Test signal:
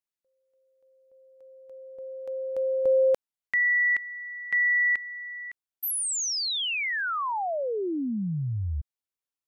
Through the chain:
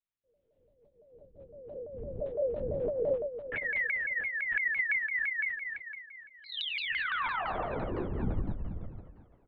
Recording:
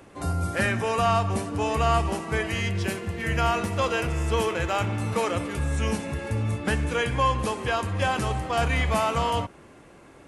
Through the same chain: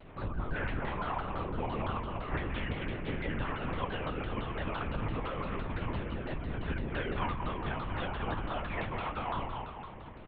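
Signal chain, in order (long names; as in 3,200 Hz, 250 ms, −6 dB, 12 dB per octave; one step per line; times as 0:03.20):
sub-octave generator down 2 octaves, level +2 dB
dynamic equaliser 1,100 Hz, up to +5 dB, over −40 dBFS, Q 1.8
downward compressor 10 to 1, threshold −31 dBFS
multi-voice chorus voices 4, 0.52 Hz, delay 24 ms, depth 3.5 ms
double-tracking delay 21 ms −11 dB
on a send: echo with a time of its own for lows and highs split 420 Hz, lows 120 ms, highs 240 ms, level −4.5 dB
on the sum: linear-prediction vocoder at 8 kHz whisper
pitch modulation by a square or saw wave saw down 5.9 Hz, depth 250 cents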